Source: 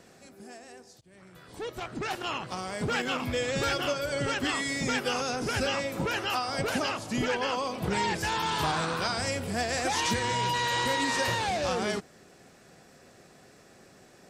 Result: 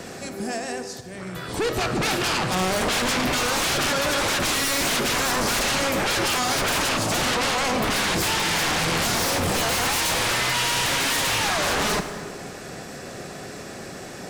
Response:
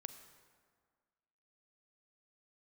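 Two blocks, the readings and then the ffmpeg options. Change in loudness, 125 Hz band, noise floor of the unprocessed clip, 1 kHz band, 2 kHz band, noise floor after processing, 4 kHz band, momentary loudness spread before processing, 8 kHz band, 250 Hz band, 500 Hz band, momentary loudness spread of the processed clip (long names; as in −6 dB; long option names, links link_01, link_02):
+7.5 dB, +5.5 dB, −56 dBFS, +5.0 dB, +7.5 dB, −37 dBFS, +9.5 dB, 8 LU, +12.5 dB, +5.5 dB, +5.0 dB, 15 LU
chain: -filter_complex "[0:a]acrossover=split=370[link_01][link_02];[link_02]acompressor=threshold=-30dB:ratio=6[link_03];[link_01][link_03]amix=inputs=2:normalize=0,aeval=exprs='0.168*sin(PI/2*8.91*val(0)/0.168)':channel_layout=same[link_04];[1:a]atrim=start_sample=2205[link_05];[link_04][link_05]afir=irnorm=-1:irlink=0"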